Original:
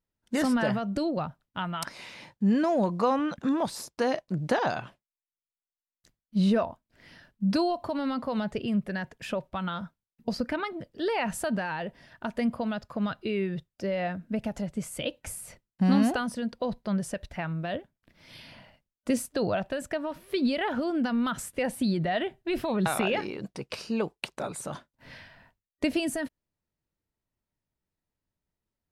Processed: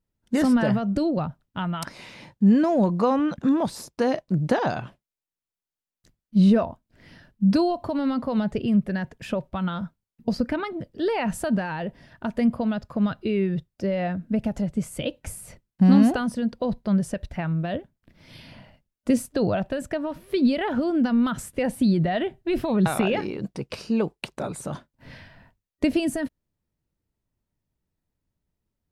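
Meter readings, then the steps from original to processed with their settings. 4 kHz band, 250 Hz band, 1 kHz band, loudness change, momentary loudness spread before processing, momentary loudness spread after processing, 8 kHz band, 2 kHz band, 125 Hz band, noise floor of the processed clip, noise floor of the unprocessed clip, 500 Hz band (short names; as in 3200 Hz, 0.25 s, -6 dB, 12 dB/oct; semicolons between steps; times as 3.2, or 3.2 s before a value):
0.0 dB, +6.5 dB, +2.0 dB, +5.5 dB, 13 LU, 13 LU, 0.0 dB, +0.5 dB, +7.0 dB, under -85 dBFS, under -85 dBFS, +3.5 dB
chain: low shelf 430 Hz +8.5 dB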